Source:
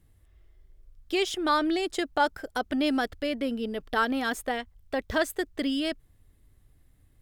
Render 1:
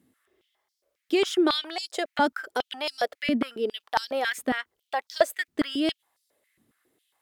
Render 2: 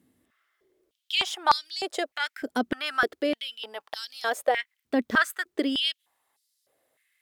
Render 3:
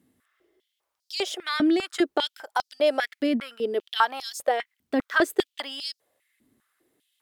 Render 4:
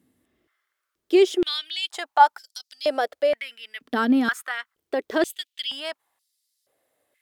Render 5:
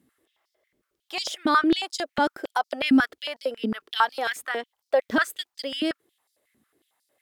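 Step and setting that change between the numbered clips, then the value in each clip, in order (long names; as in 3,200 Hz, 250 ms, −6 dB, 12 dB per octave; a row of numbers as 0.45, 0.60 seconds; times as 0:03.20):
high-pass on a step sequencer, speed: 7.3, 3.3, 5, 2.1, 11 Hertz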